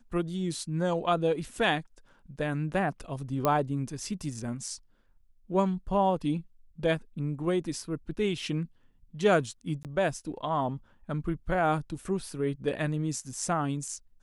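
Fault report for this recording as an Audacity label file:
3.450000	3.450000	click −12 dBFS
9.830000	9.850000	drop-out 18 ms

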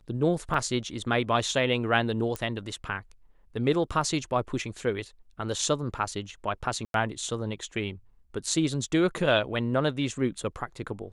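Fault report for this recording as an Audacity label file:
0.540000	0.540000	drop-out 2.7 ms
2.360000	2.360000	click −17 dBFS
6.850000	6.940000	drop-out 92 ms

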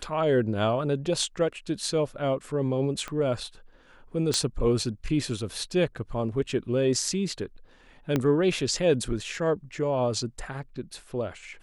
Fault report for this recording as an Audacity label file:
3.080000	3.080000	click −20 dBFS
4.340000	4.340000	click −12 dBFS
8.160000	8.160000	click −12 dBFS

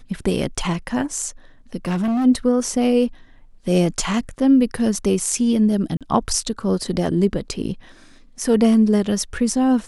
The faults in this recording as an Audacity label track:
1.850000	2.260000	clipping −18 dBFS
5.970000	6.010000	drop-out 37 ms

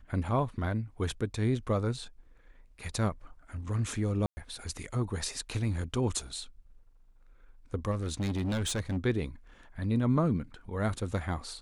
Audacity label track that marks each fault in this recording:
4.260000	4.370000	drop-out 110 ms
7.910000	8.980000	clipping −28 dBFS

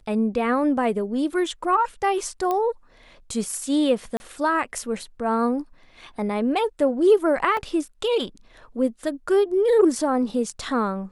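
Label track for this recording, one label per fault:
2.510000	2.510000	click −13 dBFS
4.170000	4.200000	drop-out 30 ms
7.570000	7.570000	drop-out 2.1 ms

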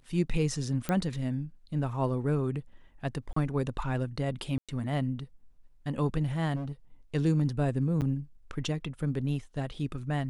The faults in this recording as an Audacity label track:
0.890000	0.890000	click −15 dBFS
3.330000	3.360000	drop-out 34 ms
4.580000	4.690000	drop-out 106 ms
6.550000	6.720000	clipping −31.5 dBFS
8.010000	8.020000	drop-out 8.5 ms

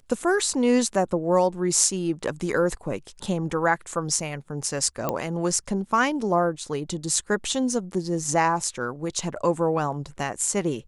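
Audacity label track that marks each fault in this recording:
5.090000	5.090000	click −11 dBFS

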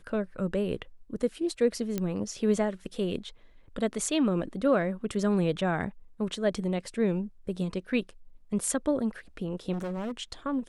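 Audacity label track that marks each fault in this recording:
1.980000	1.980000	click −16 dBFS
9.720000	10.120000	clipping −30 dBFS

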